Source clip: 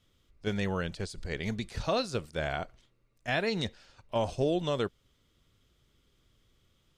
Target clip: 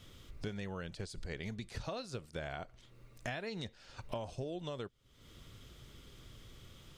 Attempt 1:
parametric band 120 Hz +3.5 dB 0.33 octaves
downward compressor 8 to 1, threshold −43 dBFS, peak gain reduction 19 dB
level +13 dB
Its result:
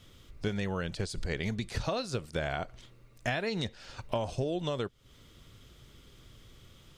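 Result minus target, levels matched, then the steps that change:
downward compressor: peak gain reduction −8.5 dB
change: downward compressor 8 to 1, threshold −53 dBFS, peak gain reduction 27.5 dB

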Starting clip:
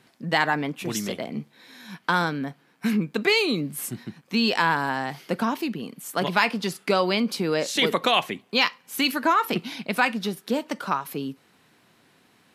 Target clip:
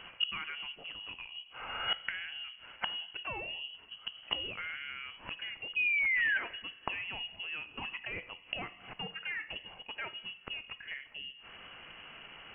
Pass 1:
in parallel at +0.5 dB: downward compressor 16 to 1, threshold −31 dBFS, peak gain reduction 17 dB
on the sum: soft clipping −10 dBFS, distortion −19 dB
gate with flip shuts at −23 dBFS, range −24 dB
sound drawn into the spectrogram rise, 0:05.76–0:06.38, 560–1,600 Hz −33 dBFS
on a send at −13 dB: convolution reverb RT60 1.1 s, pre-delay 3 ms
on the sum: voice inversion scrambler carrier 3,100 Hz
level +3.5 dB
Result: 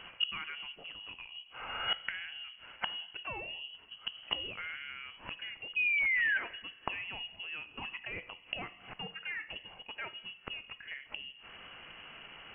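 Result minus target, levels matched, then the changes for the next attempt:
downward compressor: peak gain reduction +7 dB
change: downward compressor 16 to 1, threshold −23.5 dBFS, peak gain reduction 10 dB

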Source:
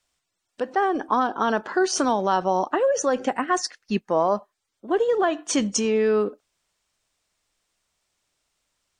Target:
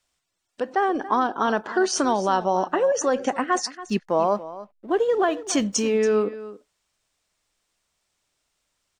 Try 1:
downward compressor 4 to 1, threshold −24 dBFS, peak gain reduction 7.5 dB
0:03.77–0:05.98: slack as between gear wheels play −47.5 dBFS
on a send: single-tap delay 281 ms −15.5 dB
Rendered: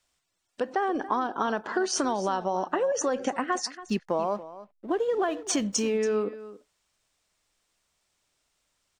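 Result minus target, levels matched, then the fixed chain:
downward compressor: peak gain reduction +7.5 dB
0:03.77–0:05.98: slack as between gear wheels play −47.5 dBFS
on a send: single-tap delay 281 ms −15.5 dB

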